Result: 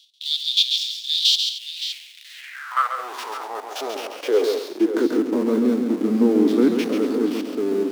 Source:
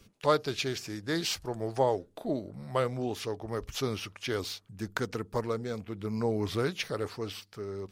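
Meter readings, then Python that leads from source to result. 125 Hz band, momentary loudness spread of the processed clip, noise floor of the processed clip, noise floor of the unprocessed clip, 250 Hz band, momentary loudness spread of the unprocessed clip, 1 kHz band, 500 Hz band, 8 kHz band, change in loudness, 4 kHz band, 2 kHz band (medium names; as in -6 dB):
no reading, 14 LU, -44 dBFS, -61 dBFS, +15.0 dB, 9 LU, +6.5 dB, +8.5 dB, +7.5 dB, +12.0 dB, +17.0 dB, +5.0 dB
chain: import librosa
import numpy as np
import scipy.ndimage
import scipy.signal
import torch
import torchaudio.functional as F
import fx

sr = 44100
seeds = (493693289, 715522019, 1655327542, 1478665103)

p1 = fx.spec_steps(x, sr, hold_ms=50)
p2 = fx.peak_eq(p1, sr, hz=160.0, db=2.5, octaves=1.4)
p3 = fx.schmitt(p2, sr, flips_db=-41.5)
p4 = p2 + F.gain(torch.from_numpy(p3), -4.0).numpy()
p5 = fx.filter_sweep_highpass(p4, sr, from_hz=3400.0, to_hz=250.0, start_s=1.38, end_s=5.32, q=5.2)
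p6 = fx.echo_multitap(p5, sr, ms=(137, 228, 567), db=(-6.0, -14.5, -11.0))
y = fx.filter_sweep_highpass(p6, sr, from_hz=3700.0, to_hz=290.0, start_s=2.31, end_s=3.18, q=2.4)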